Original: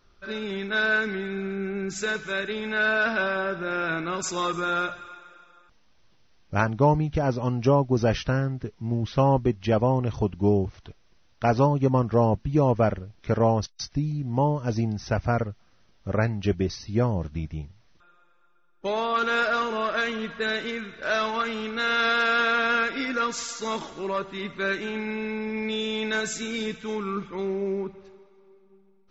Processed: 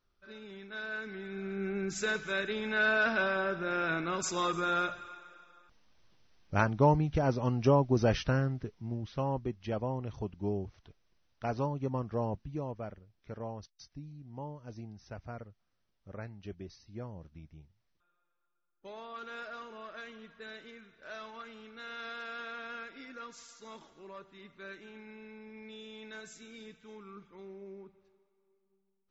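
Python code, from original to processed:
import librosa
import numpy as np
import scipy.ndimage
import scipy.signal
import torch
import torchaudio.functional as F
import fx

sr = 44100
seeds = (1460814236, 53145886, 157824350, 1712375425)

y = fx.gain(x, sr, db=fx.line((0.89, -16.5), (1.68, -4.5), (8.52, -4.5), (9.08, -12.5), (12.35, -12.5), (12.79, -19.5)))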